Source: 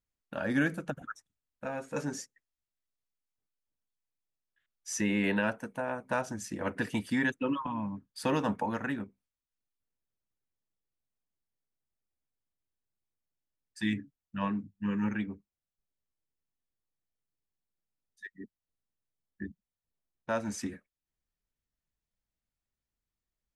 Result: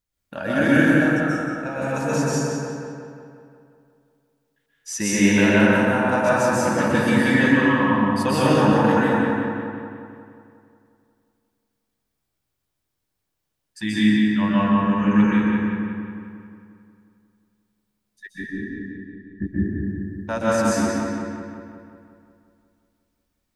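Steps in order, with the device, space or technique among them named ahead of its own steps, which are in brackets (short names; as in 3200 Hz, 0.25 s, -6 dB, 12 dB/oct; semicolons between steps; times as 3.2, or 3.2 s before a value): 18.33–19.47 RIAA curve playback; presence and air boost (bell 4400 Hz +2 dB; high shelf 9500 Hz +4 dB); darkening echo 0.179 s, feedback 61%, low-pass 4500 Hz, level -4 dB; plate-style reverb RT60 1.6 s, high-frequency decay 0.55×, pre-delay 0.115 s, DRR -8 dB; gain +4 dB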